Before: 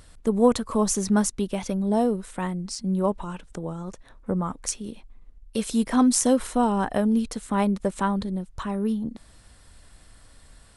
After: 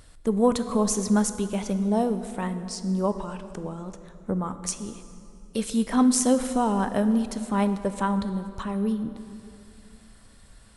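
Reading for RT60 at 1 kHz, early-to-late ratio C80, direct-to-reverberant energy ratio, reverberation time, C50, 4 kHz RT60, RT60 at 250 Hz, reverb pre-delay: 2.5 s, 12.0 dB, 10.0 dB, 2.6 s, 11.0 dB, 2.0 s, 3.1 s, 7 ms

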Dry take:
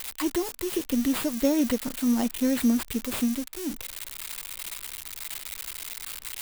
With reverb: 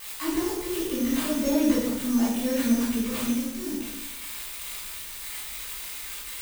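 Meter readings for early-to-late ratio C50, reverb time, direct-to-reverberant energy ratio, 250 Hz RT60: 0.5 dB, 0.95 s, -10.0 dB, 1.0 s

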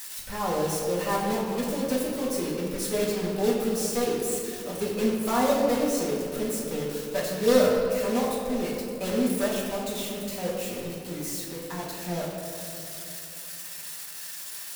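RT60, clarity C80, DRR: 2.7 s, 2.5 dB, -6.0 dB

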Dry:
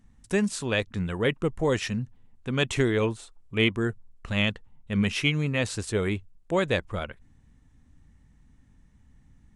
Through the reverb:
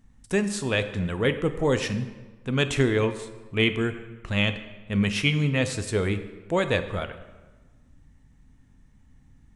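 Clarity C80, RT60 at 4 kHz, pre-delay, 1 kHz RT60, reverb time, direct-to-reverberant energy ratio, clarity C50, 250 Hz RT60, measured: 13.0 dB, 0.90 s, 3 ms, 1.3 s, 1.3 s, 9.0 dB, 11.5 dB, 1.4 s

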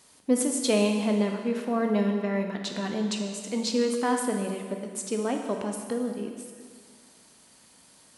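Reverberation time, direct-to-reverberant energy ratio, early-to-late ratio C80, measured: 1.9 s, 3.0 dB, 6.0 dB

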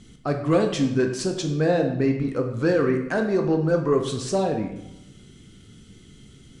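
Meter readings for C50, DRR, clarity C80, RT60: 7.0 dB, 3.5 dB, 10.0 dB, 0.90 s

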